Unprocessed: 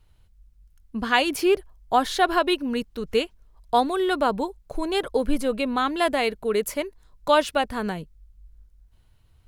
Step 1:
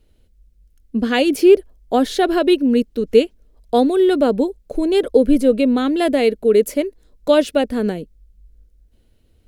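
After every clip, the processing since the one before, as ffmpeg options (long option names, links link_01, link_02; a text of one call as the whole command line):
ffmpeg -i in.wav -af "equalizer=frequency=125:width_type=o:width=1:gain=-7,equalizer=frequency=250:width_type=o:width=1:gain=10,equalizer=frequency=500:width_type=o:width=1:gain=9,equalizer=frequency=1000:width_type=o:width=1:gain=-11,volume=2dB" out.wav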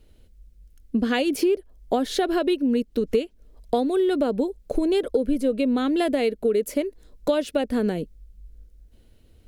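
ffmpeg -i in.wav -af "acompressor=threshold=-22dB:ratio=6,volume=2.5dB" out.wav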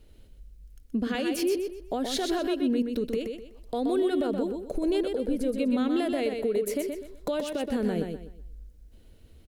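ffmpeg -i in.wav -filter_complex "[0:a]alimiter=limit=-20.5dB:level=0:latency=1:release=166,asplit=2[link_01][link_02];[link_02]aecho=0:1:125|250|375|500:0.531|0.159|0.0478|0.0143[link_03];[link_01][link_03]amix=inputs=2:normalize=0" out.wav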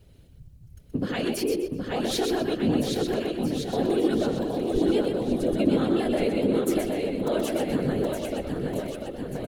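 ffmpeg -i in.wav -af "afftfilt=real='hypot(re,im)*cos(2*PI*random(0))':imag='hypot(re,im)*sin(2*PI*random(1))':win_size=512:overlap=0.75,aecho=1:1:770|1463|2087|2648|3153:0.631|0.398|0.251|0.158|0.1,volume=7dB" out.wav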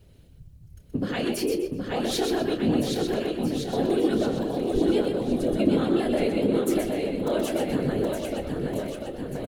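ffmpeg -i in.wav -filter_complex "[0:a]asplit=2[link_01][link_02];[link_02]adelay=29,volume=-11.5dB[link_03];[link_01][link_03]amix=inputs=2:normalize=0" out.wav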